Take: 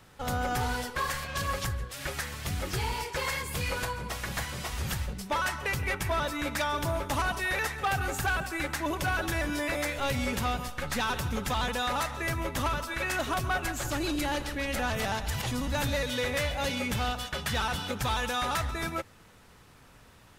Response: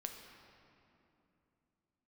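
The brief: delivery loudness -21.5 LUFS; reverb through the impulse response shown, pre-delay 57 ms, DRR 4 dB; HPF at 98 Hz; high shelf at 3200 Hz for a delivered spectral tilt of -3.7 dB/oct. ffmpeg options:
-filter_complex "[0:a]highpass=98,highshelf=f=3.2k:g=4,asplit=2[a][b];[1:a]atrim=start_sample=2205,adelay=57[c];[b][c]afir=irnorm=-1:irlink=0,volume=-1.5dB[d];[a][d]amix=inputs=2:normalize=0,volume=7dB"

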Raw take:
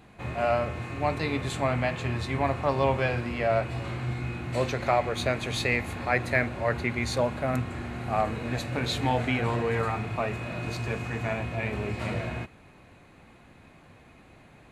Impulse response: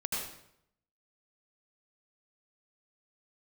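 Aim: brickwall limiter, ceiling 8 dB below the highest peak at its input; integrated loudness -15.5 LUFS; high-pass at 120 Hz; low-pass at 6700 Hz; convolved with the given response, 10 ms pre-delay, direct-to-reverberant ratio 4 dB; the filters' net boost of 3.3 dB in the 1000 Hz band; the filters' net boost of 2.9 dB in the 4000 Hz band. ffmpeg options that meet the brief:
-filter_complex "[0:a]highpass=120,lowpass=6.7k,equalizer=f=1k:t=o:g=4.5,equalizer=f=4k:t=o:g=3.5,alimiter=limit=-16dB:level=0:latency=1,asplit=2[a][b];[1:a]atrim=start_sample=2205,adelay=10[c];[b][c]afir=irnorm=-1:irlink=0,volume=-8.5dB[d];[a][d]amix=inputs=2:normalize=0,volume=12dB"

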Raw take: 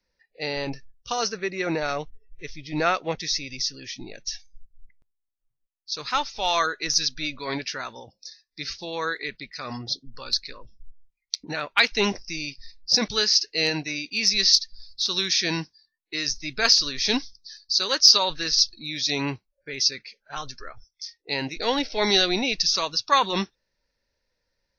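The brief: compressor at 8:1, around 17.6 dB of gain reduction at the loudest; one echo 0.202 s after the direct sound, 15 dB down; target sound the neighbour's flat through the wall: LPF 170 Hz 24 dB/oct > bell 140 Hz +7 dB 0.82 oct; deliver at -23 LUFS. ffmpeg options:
-af "acompressor=threshold=-29dB:ratio=8,lowpass=f=170:w=0.5412,lowpass=f=170:w=1.3066,equalizer=f=140:t=o:w=0.82:g=7,aecho=1:1:202:0.178,volume=23dB"

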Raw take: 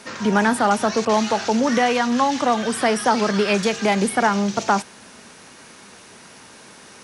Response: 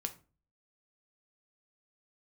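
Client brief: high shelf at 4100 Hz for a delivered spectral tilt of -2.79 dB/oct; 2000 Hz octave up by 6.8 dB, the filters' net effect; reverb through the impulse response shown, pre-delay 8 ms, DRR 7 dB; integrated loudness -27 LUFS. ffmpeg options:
-filter_complex "[0:a]equalizer=f=2k:t=o:g=7,highshelf=f=4.1k:g=8,asplit=2[a][b];[1:a]atrim=start_sample=2205,adelay=8[c];[b][c]afir=irnorm=-1:irlink=0,volume=-6.5dB[d];[a][d]amix=inputs=2:normalize=0,volume=-11dB"

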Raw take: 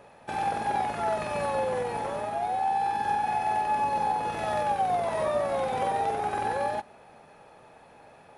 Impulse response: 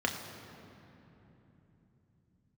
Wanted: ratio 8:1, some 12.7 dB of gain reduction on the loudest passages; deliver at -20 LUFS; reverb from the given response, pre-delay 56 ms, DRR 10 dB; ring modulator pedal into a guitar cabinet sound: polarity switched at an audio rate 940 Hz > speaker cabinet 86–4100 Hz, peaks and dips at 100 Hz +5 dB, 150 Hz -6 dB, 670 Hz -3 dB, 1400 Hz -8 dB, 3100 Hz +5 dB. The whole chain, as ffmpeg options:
-filter_complex "[0:a]acompressor=threshold=-37dB:ratio=8,asplit=2[a][b];[1:a]atrim=start_sample=2205,adelay=56[c];[b][c]afir=irnorm=-1:irlink=0,volume=-18dB[d];[a][d]amix=inputs=2:normalize=0,aeval=exprs='val(0)*sgn(sin(2*PI*940*n/s))':c=same,highpass=86,equalizer=f=100:t=q:w=4:g=5,equalizer=f=150:t=q:w=4:g=-6,equalizer=f=670:t=q:w=4:g=-3,equalizer=f=1.4k:t=q:w=4:g=-8,equalizer=f=3.1k:t=q:w=4:g=5,lowpass=f=4.1k:w=0.5412,lowpass=f=4.1k:w=1.3066,volume=19.5dB"

